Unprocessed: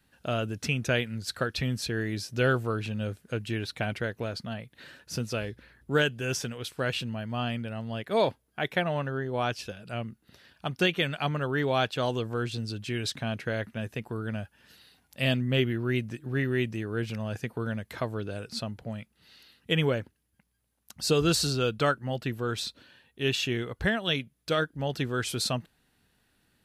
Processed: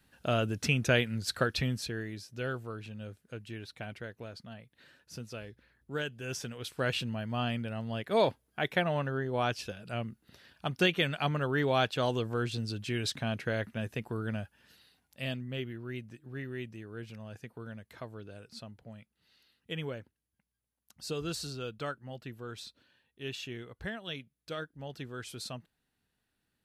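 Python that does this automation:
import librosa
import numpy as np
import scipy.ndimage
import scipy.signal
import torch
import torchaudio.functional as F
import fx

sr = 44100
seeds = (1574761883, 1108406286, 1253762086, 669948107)

y = fx.gain(x, sr, db=fx.line((1.51, 0.5), (2.24, -11.0), (5.99, -11.0), (6.84, -1.5), (14.31, -1.5), (15.52, -12.0)))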